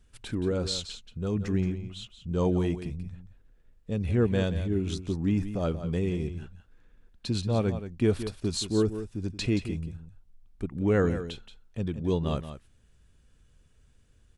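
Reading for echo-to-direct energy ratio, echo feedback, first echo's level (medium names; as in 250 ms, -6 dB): -11.0 dB, no regular repeats, -11.0 dB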